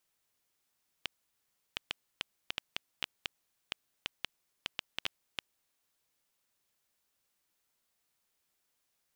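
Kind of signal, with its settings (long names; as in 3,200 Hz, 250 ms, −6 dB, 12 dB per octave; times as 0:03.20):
Geiger counter clicks 3.7 per second −15 dBFS 5.10 s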